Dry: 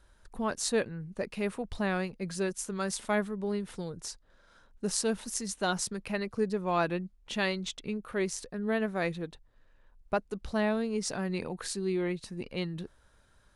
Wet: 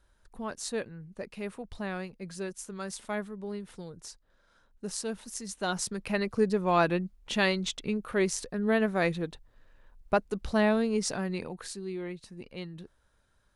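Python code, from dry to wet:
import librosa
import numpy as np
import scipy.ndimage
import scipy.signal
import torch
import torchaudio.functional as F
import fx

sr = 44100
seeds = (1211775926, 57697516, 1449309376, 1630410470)

y = fx.gain(x, sr, db=fx.line((5.31, -5.0), (6.21, 4.0), (10.92, 4.0), (11.86, -6.0)))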